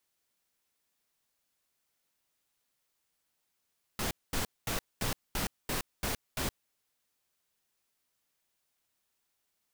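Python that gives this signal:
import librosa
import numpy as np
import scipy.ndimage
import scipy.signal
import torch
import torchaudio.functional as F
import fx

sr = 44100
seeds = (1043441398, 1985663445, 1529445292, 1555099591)

y = fx.noise_burst(sr, seeds[0], colour='pink', on_s=0.12, off_s=0.22, bursts=8, level_db=-32.5)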